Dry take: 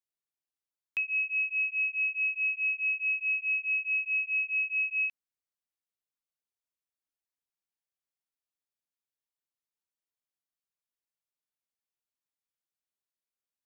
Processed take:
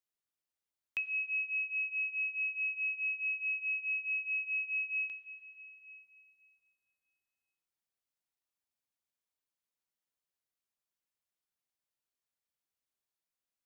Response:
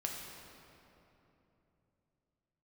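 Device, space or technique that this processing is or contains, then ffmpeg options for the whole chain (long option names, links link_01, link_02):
ducked reverb: -filter_complex "[0:a]asplit=3[link_01][link_02][link_03];[1:a]atrim=start_sample=2205[link_04];[link_02][link_04]afir=irnorm=-1:irlink=0[link_05];[link_03]apad=whole_len=602378[link_06];[link_05][link_06]sidechaincompress=threshold=-35dB:ratio=8:attack=16:release=1130,volume=1.5dB[link_07];[link_01][link_07]amix=inputs=2:normalize=0,volume=-6.5dB"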